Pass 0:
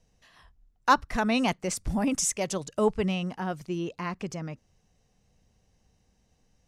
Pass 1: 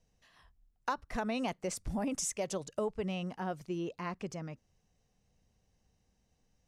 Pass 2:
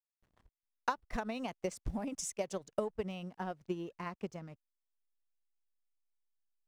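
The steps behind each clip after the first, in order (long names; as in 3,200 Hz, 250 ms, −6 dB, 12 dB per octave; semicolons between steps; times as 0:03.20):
dynamic equaliser 550 Hz, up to +5 dB, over −39 dBFS, Q 1; downward compressor 10 to 1, threshold −24 dBFS, peak gain reduction 12 dB; level −6.5 dB
slack as between gear wheels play −52.5 dBFS; transient designer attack +8 dB, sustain −7 dB; level −5.5 dB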